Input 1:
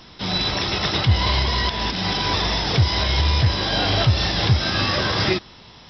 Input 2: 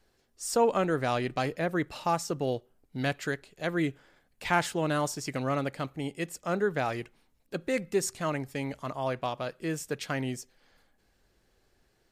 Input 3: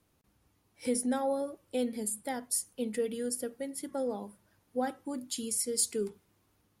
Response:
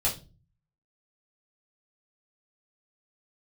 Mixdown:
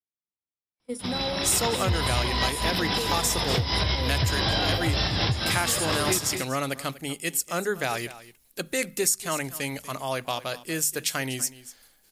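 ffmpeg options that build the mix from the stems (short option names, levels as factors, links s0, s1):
-filter_complex "[0:a]adelay=800,volume=1.12,asplit=2[s0][s1];[s1]volume=0.211[s2];[1:a]equalizer=f=11000:w=3.4:g=5.5,bandreject=f=50:t=h:w=6,bandreject=f=100:t=h:w=6,bandreject=f=150:t=h:w=6,bandreject=f=200:t=h:w=6,bandreject=f=250:t=h:w=6,crystalizer=i=6:c=0,adelay=1050,volume=1,asplit=2[s3][s4];[s4]volume=0.133[s5];[2:a]highpass=f=140:p=1,volume=0.891,asplit=2[s6][s7];[s7]apad=whole_len=295271[s8];[s0][s8]sidechaincompress=threshold=0.00794:ratio=5:attack=44:release=101[s9];[s9][s6]amix=inputs=2:normalize=0,agate=range=0.02:threshold=0.0316:ratio=16:detection=peak,alimiter=limit=0.282:level=0:latency=1:release=189,volume=1[s10];[s2][s5]amix=inputs=2:normalize=0,aecho=0:1:243:1[s11];[s3][s10][s11]amix=inputs=3:normalize=0,acompressor=threshold=0.0891:ratio=4"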